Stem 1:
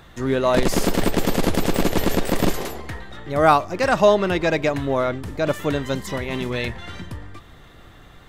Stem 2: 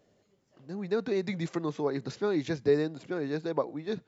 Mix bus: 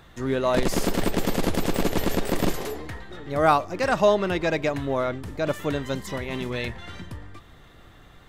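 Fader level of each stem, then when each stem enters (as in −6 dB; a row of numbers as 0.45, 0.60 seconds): −4.0, −11.5 decibels; 0.00, 0.00 seconds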